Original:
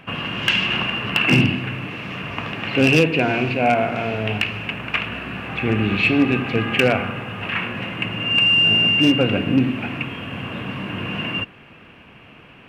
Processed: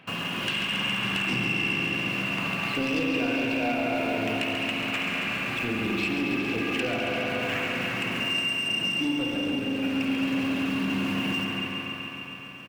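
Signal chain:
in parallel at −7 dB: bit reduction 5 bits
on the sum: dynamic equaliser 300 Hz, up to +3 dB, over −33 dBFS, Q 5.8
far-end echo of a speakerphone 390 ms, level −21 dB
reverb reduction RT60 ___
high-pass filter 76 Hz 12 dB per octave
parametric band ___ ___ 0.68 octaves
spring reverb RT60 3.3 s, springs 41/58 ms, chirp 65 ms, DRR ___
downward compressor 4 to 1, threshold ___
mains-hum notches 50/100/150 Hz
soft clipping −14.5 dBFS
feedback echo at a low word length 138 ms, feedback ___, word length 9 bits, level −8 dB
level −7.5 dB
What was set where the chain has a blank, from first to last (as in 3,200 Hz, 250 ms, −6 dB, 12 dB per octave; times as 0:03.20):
0.77 s, 4,100 Hz, +6 dB, −1.5 dB, −17 dBFS, 80%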